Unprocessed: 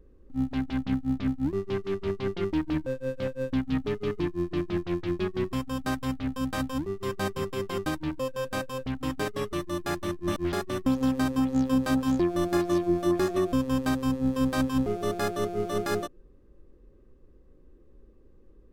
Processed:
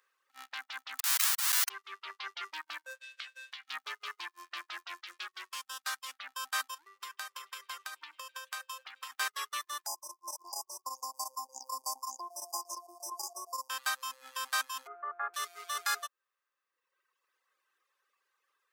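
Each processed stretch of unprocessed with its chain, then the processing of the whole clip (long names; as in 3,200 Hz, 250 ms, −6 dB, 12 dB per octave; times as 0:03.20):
0:00.99–0:01.69: sign of each sample alone + spectral tilt +3.5 dB per octave + transient designer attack −7 dB, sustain +2 dB
0:03.01–0:03.71: meter weighting curve D + downward compressor 12 to 1, threshold −38 dBFS + double-tracking delay 18 ms −7.5 dB
0:05.03–0:06.14: high-pass filter 150 Hz + parametric band 870 Hz −5 dB 3 octaves + highs frequency-modulated by the lows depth 0.14 ms
0:06.74–0:09.12: downward compressor 16 to 1, threshold −33 dBFS + echo through a band-pass that steps 108 ms, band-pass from 160 Hz, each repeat 1.4 octaves, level −6.5 dB
0:09.86–0:13.70: square-wave tremolo 8.6 Hz, depth 60%, duty 85% + linear-phase brick-wall band-stop 1,100–4,700 Hz + parametric band 1,500 Hz +13 dB 0.5 octaves
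0:14.87–0:15.34: inverse Chebyshev low-pass filter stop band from 6,100 Hz, stop band 70 dB + low-shelf EQ 150 Hz +9.5 dB
whole clip: high-pass filter 1,200 Hz 24 dB per octave; reverb reduction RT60 1.4 s; dynamic equaliser 2,400 Hz, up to −5 dB, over −53 dBFS, Q 0.88; level +7 dB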